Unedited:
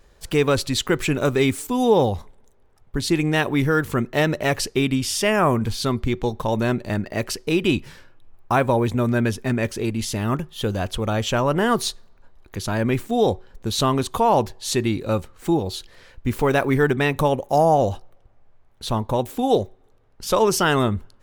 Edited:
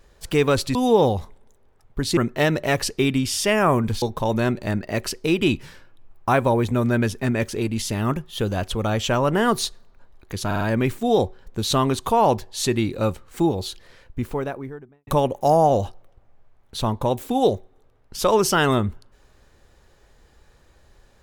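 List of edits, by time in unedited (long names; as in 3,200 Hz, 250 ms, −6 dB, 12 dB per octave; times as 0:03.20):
0:00.75–0:01.72: remove
0:03.14–0:03.94: remove
0:05.79–0:06.25: remove
0:12.69: stutter 0.05 s, 4 plays
0:15.74–0:17.15: fade out and dull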